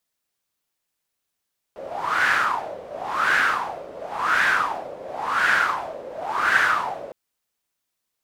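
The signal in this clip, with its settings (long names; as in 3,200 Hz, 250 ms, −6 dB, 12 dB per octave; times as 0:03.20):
wind from filtered noise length 5.36 s, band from 530 Hz, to 1,600 Hz, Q 6.2, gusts 5, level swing 18 dB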